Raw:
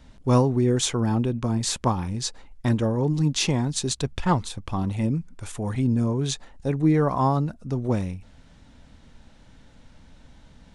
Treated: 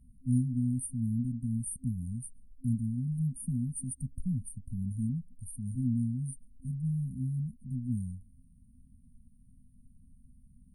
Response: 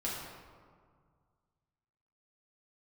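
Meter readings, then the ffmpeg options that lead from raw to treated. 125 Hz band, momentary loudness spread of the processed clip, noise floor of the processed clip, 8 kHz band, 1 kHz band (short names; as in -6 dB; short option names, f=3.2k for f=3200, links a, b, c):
-7.5 dB, 10 LU, -60 dBFS, -11.0 dB, under -40 dB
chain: -af "lowshelf=f=290:t=q:w=1.5:g=-6.5,afftfilt=real='re*(1-between(b*sr/4096,260,8700))':imag='im*(1-between(b*sr/4096,260,8700))':win_size=4096:overlap=0.75"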